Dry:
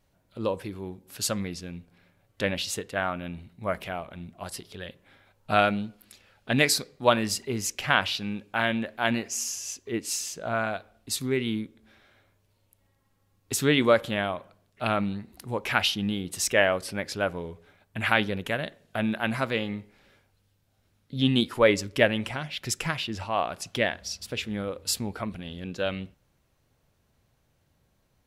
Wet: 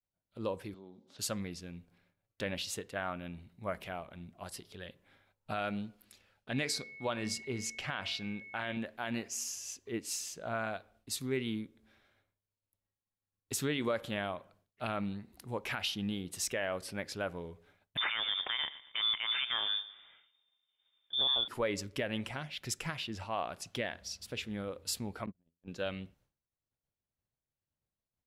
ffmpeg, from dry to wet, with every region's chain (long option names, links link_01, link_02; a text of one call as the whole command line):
ffmpeg -i in.wav -filter_complex "[0:a]asettb=1/sr,asplit=3[link_01][link_02][link_03];[link_01]atrim=end=0.744[link_04];[link_02]atrim=start=0.74:end=1.19,asetpts=PTS-STARTPTS,afade=type=in:duration=0.004:curve=qsin,afade=type=out:start_time=0.446:duration=0.004:curve=qsin,acompressor=threshold=-43dB:ratio=3:attack=3.2:release=140:knee=1:detection=peak,highpass=180,equalizer=frequency=230:width_type=q:width=4:gain=7,equalizer=frequency=590:width_type=q:width=4:gain=4,equalizer=frequency=1700:width_type=q:width=4:gain=-7,equalizer=frequency=2500:width_type=q:width=4:gain=-9,equalizer=frequency=3700:width_type=q:width=4:gain=7,lowpass=frequency=6200:width=0.5412,lowpass=frequency=6200:width=1.3066[link_05];[link_03]atrim=start=1.186[link_06];[link_04][link_05]acrossfade=duration=0.004:curve1=hsin:curve2=qsin[link_07];[link_07][link_06]acrossfade=duration=0.004:curve1=qsin:curve2=hsin,asettb=1/sr,asplit=3[link_08][link_09][link_10];[link_08]atrim=end=6.524[link_11];[link_09]atrim=start=6.52:end=8.77,asetpts=PTS-STARTPTS,afade=type=in:duration=0.004:curve=qsin,afade=type=out:start_time=2.246:duration=0.004:curve=qsin,lowpass=8700,bandreject=frequency=225.9:width_type=h:width=4,bandreject=frequency=451.8:width_type=h:width=4,bandreject=frequency=677.7:width_type=h:width=4,aeval=exprs='val(0)+0.01*sin(2*PI*2200*n/s)':channel_layout=same[link_12];[link_10]atrim=start=8.766[link_13];[link_11][link_12]acrossfade=duration=0.004:curve1=hsin:curve2=qsin[link_14];[link_14][link_13]acrossfade=duration=0.004:curve1=qsin:curve2=hsin,asettb=1/sr,asplit=3[link_15][link_16][link_17];[link_15]atrim=end=17.974[link_18];[link_16]atrim=start=17.97:end=21.48,asetpts=PTS-STARTPTS,afade=type=in:duration=0.004:curve=qsin,afade=type=out:start_time=3.506:duration=0.004:curve=qsin,acontrast=61,aecho=1:1:117|234|351:0.1|0.04|0.016,atrim=end_sample=154791,lowpass=frequency=3100:width_type=q:width=0.5098,lowpass=frequency=3100:width_type=q:width=0.6013,lowpass=frequency=3100:width_type=q:width=0.9,lowpass=frequency=3100:width_type=q:width=2.563,afreqshift=-3700[link_19];[link_17]atrim=start=21.476[link_20];[link_18][link_19]acrossfade=duration=0.004:curve1=hsin:curve2=qsin[link_21];[link_21][link_20]acrossfade=duration=0.004:curve1=qsin:curve2=hsin,asettb=1/sr,asplit=3[link_22][link_23][link_24];[link_22]atrim=end=25.264[link_25];[link_23]atrim=start=25.26:end=25.68,asetpts=PTS-STARTPTS,afade=type=in:duration=0.004:curve=qsin,afade=type=out:start_time=0.416:duration=0.004:curve=qsin,agate=range=-34dB:threshold=-34dB:ratio=16:release=100:detection=peak,adynamicsmooth=sensitivity=4:basefreq=750[link_26];[link_24]atrim=start=25.676[link_27];[link_25][link_26]acrossfade=duration=0.004:curve1=hsin:curve2=qsin[link_28];[link_28][link_27]acrossfade=duration=0.004:curve1=qsin:curve2=hsin,agate=range=-33dB:threshold=-56dB:ratio=3:detection=peak,alimiter=limit=-15.5dB:level=0:latency=1:release=94,volume=-7.5dB" out.wav